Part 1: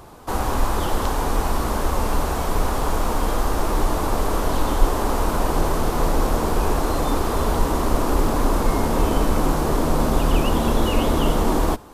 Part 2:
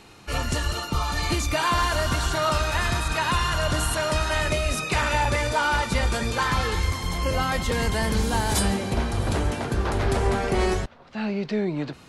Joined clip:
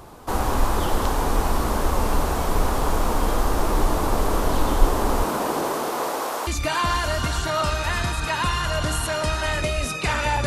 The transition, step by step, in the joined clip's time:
part 1
5.23–6.47 s: high-pass 160 Hz -> 730 Hz
6.47 s: go over to part 2 from 1.35 s

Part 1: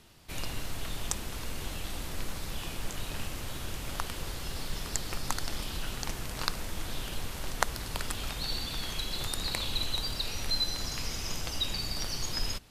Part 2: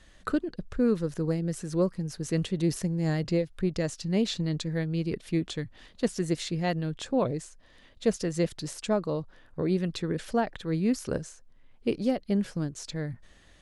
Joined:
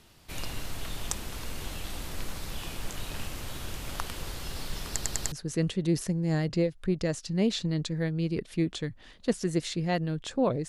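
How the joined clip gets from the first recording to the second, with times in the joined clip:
part 1
4.92 s: stutter in place 0.10 s, 4 plays
5.32 s: go over to part 2 from 2.07 s

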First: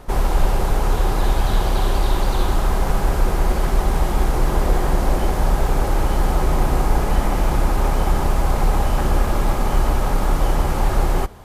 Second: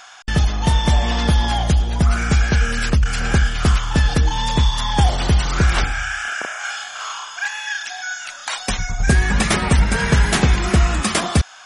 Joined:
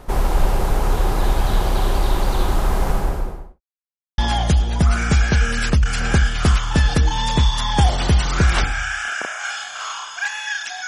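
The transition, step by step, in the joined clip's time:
first
2.83–3.61 s: studio fade out
3.61–4.18 s: mute
4.18 s: go over to second from 1.38 s

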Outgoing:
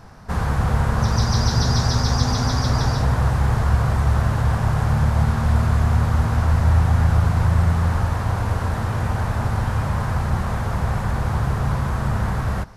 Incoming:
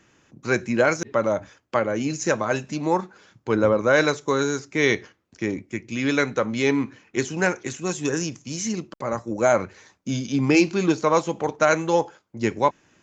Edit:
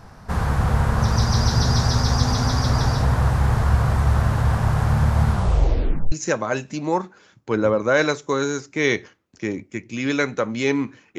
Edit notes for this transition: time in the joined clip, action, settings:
outgoing
5.28 s: tape stop 0.84 s
6.12 s: go over to incoming from 2.11 s

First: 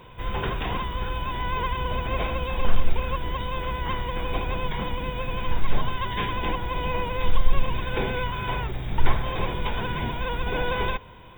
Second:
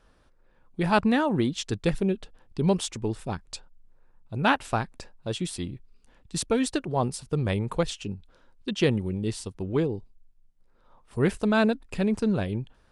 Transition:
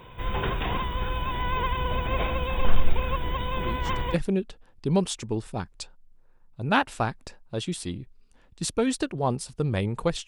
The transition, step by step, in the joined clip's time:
first
3.57 s: add second from 1.30 s 0.57 s -12 dB
4.14 s: go over to second from 1.87 s

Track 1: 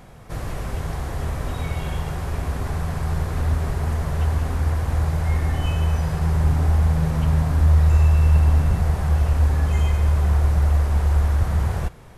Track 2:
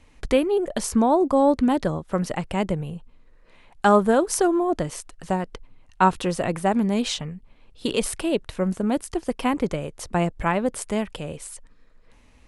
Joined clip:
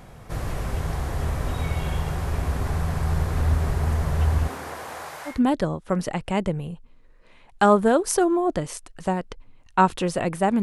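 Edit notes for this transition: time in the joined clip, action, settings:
track 1
4.47–5.41 s: high-pass 260 Hz -> 1.1 kHz
5.33 s: go over to track 2 from 1.56 s, crossfade 0.16 s

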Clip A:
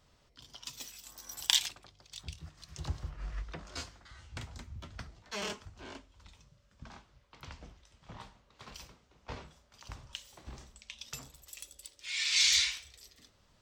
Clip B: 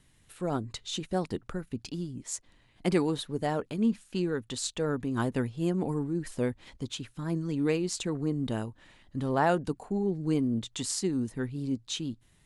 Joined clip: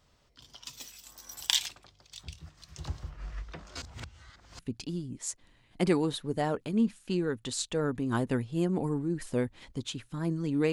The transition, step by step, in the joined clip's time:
clip A
3.82–4.59 s: reverse
4.59 s: go over to clip B from 1.64 s

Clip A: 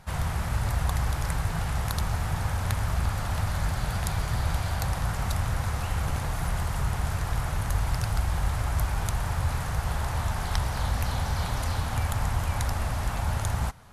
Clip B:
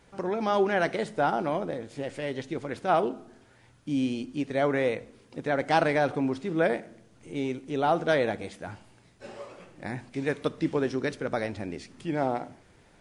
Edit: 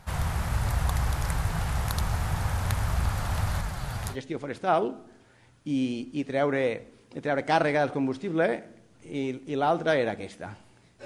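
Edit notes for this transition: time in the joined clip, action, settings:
clip A
3.61–4.17 s: flange 0.92 Hz, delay 3.9 ms, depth 6.7 ms, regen +44%
4.13 s: go over to clip B from 2.34 s, crossfade 0.08 s

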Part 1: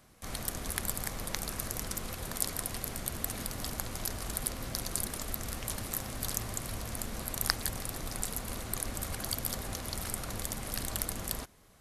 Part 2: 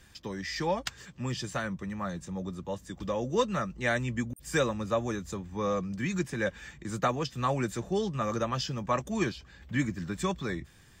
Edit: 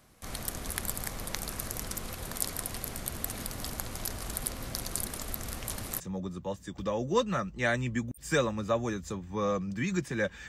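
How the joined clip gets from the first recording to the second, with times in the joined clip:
part 1
6.00 s: go over to part 2 from 2.22 s

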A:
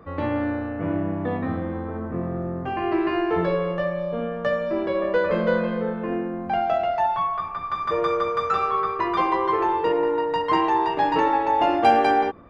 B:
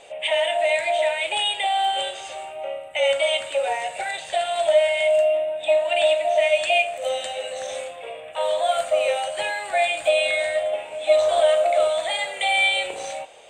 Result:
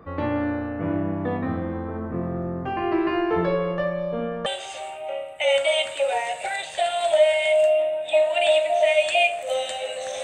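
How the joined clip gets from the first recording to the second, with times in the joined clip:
A
4.46 s: go over to B from 2.01 s

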